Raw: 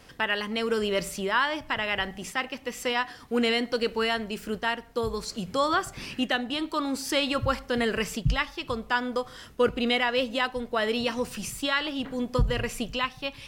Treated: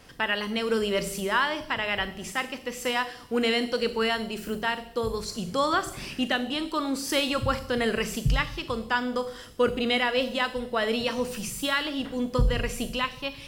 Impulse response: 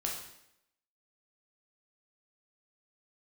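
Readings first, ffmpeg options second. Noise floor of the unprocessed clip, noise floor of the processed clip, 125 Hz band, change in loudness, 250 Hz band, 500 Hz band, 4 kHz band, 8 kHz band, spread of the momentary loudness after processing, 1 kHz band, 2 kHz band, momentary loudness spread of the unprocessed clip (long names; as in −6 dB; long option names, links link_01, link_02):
−49 dBFS, −44 dBFS, +1.0 dB, +0.5 dB, +0.5 dB, +0.5 dB, +0.5 dB, +1.5 dB, 6 LU, 0.0 dB, 0.0 dB, 6 LU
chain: -filter_complex "[0:a]asplit=2[link_01][link_02];[link_02]equalizer=frequency=1500:width=0.63:gain=-13[link_03];[1:a]atrim=start_sample=2205,highshelf=frequency=11000:gain=10.5,adelay=40[link_04];[link_03][link_04]afir=irnorm=-1:irlink=0,volume=-8dB[link_05];[link_01][link_05]amix=inputs=2:normalize=0"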